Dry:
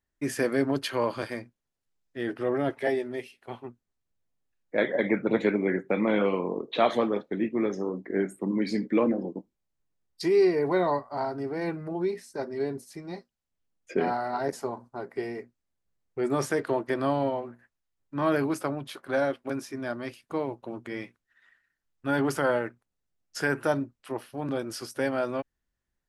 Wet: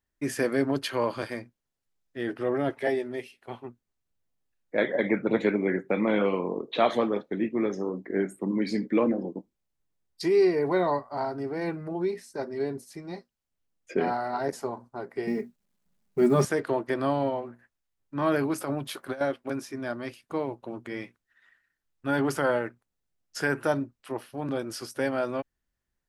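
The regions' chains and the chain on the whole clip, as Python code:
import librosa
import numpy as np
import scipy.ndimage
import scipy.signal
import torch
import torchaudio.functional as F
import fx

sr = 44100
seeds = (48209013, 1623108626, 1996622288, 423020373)

y = fx.chain(x, sr, fx.peak_eq(hz=190.0, db=12.5, octaves=1.1),
    fx.comb(ms=4.9, depth=0.72),
    fx.quant_companded(bits=8), at=(15.27, 16.45))
y = fx.chain(y, sr, fx.over_compress(threshold_db=-30.0, ratio=-0.5),
    fx.high_shelf(hz=8800.0, db=8.0), at=(18.58, 19.21))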